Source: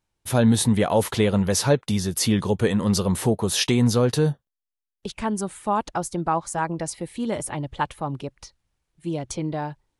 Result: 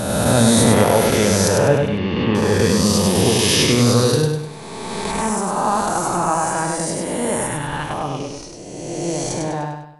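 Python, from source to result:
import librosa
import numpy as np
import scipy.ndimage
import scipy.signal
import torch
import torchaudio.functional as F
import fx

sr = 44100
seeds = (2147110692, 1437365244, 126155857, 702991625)

y = fx.spec_swells(x, sr, rise_s=2.22)
y = fx.ellip_lowpass(y, sr, hz=3000.0, order=4, stop_db=80, at=(1.48, 2.35))
y = fx.peak_eq(y, sr, hz=910.0, db=-9.0, octaves=1.2, at=(7.46, 7.9))
y = fx.echo_feedback(y, sr, ms=100, feedback_pct=40, wet_db=-4)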